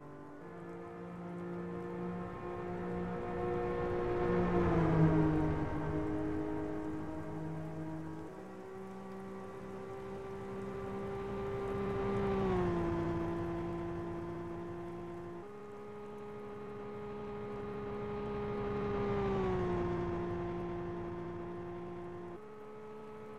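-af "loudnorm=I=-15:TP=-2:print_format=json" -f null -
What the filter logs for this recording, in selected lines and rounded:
"input_i" : "-38.6",
"input_tp" : "-16.8",
"input_lra" : "11.4",
"input_thresh" : "-48.9",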